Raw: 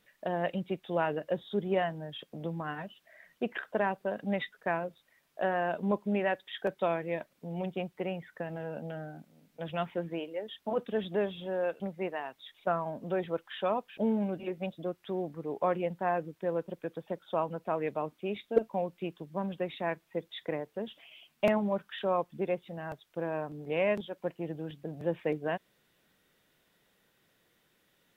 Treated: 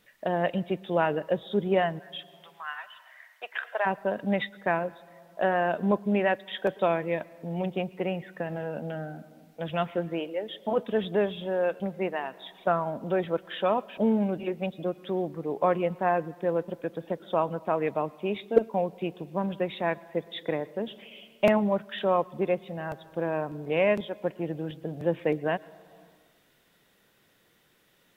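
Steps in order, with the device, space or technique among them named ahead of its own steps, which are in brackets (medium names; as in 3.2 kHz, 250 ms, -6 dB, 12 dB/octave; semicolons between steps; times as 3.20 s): 1.98–3.85 s: high-pass 1.4 kHz -> 630 Hz 24 dB/octave; compressed reverb return (on a send at -10.5 dB: reverberation RT60 1.2 s, pre-delay 105 ms + compression 4:1, threshold -43 dBFS, peak gain reduction 18 dB); on the sum: trim +5 dB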